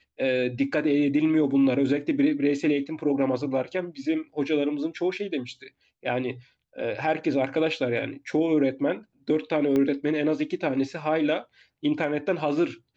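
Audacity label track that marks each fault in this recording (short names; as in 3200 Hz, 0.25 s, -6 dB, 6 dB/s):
9.760000	9.760000	pop -15 dBFS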